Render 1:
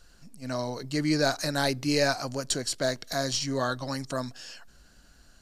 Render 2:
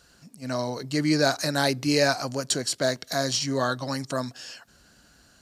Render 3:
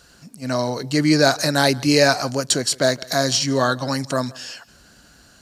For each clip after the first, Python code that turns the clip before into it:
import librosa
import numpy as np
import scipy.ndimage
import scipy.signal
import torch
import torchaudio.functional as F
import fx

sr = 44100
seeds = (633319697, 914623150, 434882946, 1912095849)

y1 = scipy.signal.sosfilt(scipy.signal.butter(2, 84.0, 'highpass', fs=sr, output='sos'), x)
y1 = y1 * 10.0 ** (3.0 / 20.0)
y2 = y1 + 10.0 ** (-23.5 / 20.0) * np.pad(y1, (int(164 * sr / 1000.0), 0))[:len(y1)]
y2 = y2 * 10.0 ** (6.5 / 20.0)